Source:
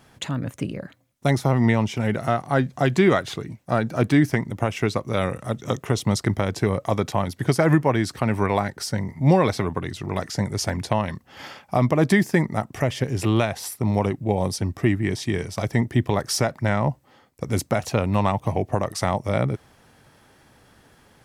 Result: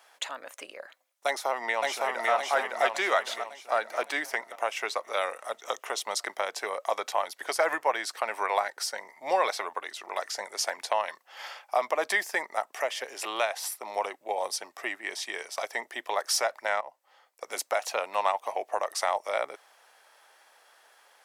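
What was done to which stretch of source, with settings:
1.26–2.31 echo throw 0.56 s, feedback 50%, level -1 dB
16.81–17.57 fade in equal-power, from -19 dB
whole clip: HPF 590 Hz 24 dB/oct; gain -1.5 dB

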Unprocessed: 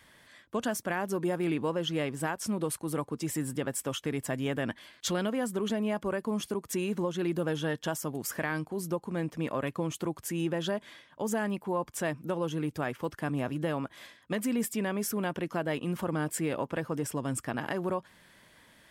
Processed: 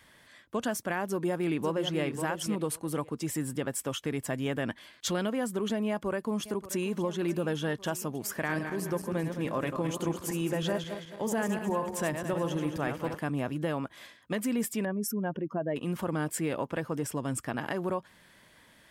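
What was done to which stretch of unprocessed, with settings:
1.05–2.01 echo throw 0.54 s, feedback 15%, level -7.5 dB
5.87–6.91 echo throw 0.58 s, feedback 70%, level -15.5 dB
8.38–13.19 regenerating reverse delay 0.107 s, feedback 63%, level -6.5 dB
14.85–15.76 spectral contrast raised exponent 1.9

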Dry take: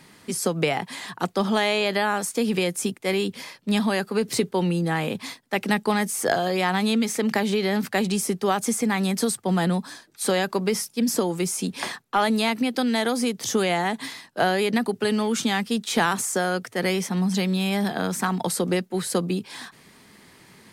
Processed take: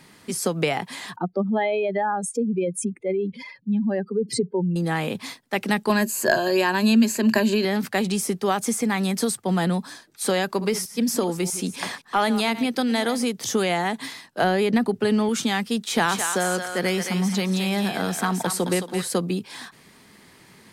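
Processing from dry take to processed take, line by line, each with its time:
1.16–4.76 spectral contrast raised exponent 2.5
5.89–7.65 ripple EQ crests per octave 1.4, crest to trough 13 dB
10.47–13.23 reverse delay 0.129 s, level -13.5 dB
14.44–15.29 tilt -1.5 dB/oct
15.84–19.08 thinning echo 0.218 s, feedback 30%, high-pass 900 Hz, level -4 dB

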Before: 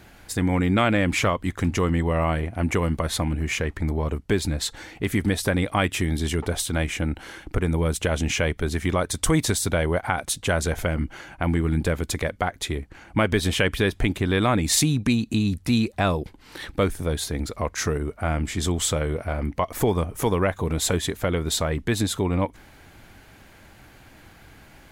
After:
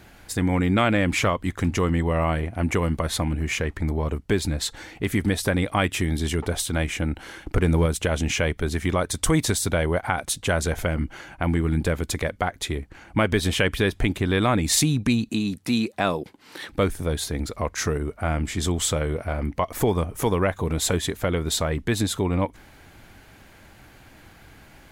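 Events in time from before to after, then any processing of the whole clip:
7.45–7.86 sample leveller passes 1
15.29–16.72 HPF 180 Hz

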